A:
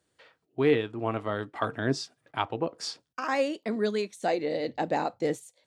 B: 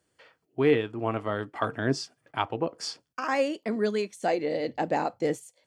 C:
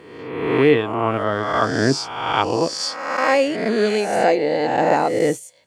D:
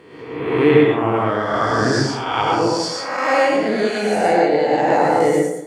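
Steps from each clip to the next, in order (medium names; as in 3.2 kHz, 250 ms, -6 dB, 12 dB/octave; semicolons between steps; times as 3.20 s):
band-stop 3.8 kHz, Q 7.5; trim +1 dB
reverse spectral sustain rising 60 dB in 1.18 s; trim +6.5 dB
plate-style reverb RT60 0.86 s, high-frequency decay 0.45×, pre-delay 85 ms, DRR -2 dB; trim -2.5 dB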